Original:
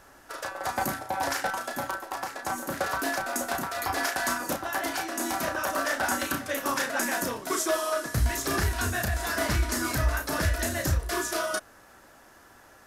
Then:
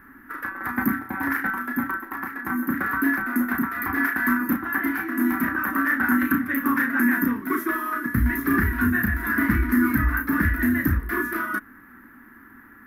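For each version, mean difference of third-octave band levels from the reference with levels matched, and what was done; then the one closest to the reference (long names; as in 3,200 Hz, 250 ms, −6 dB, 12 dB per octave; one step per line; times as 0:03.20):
10.5 dB: drawn EQ curve 150 Hz 0 dB, 250 Hz +15 dB, 610 Hz −20 dB, 1,100 Hz +1 dB, 1,900 Hz +7 dB, 2,800 Hz −13 dB, 4,400 Hz −22 dB, 7,800 Hz −28 dB, 13,000 Hz +4 dB
level +2.5 dB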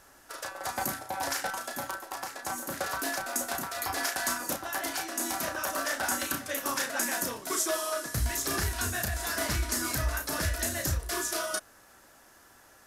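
2.5 dB: parametric band 11,000 Hz +7 dB 2.6 octaves
level −5 dB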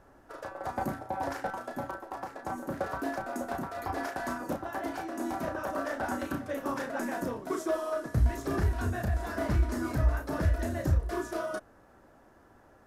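6.5 dB: tilt shelving filter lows +9 dB, about 1,400 Hz
level −8.5 dB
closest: second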